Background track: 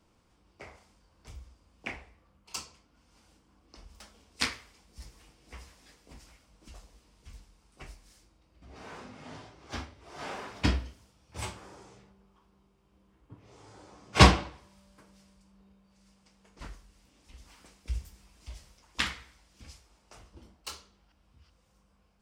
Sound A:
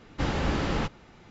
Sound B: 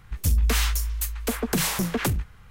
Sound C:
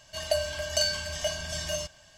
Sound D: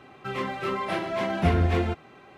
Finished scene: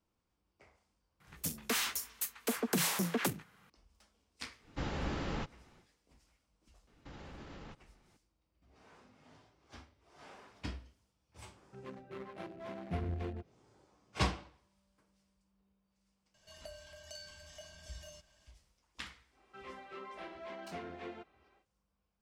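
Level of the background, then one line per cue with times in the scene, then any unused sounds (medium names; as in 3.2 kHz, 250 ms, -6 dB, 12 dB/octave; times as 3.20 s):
background track -15.5 dB
1.20 s: add B -7 dB + high-pass 160 Hz 24 dB/octave
4.58 s: add A -10 dB, fades 0.10 s
6.87 s: add A -16.5 dB + peak limiter -25.5 dBFS
11.48 s: add D -15 dB + local Wiener filter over 41 samples
16.34 s: add C -14 dB + compression 1.5:1, threshold -48 dBFS
19.29 s: add D -18 dB, fades 0.10 s + band-pass 260–6200 Hz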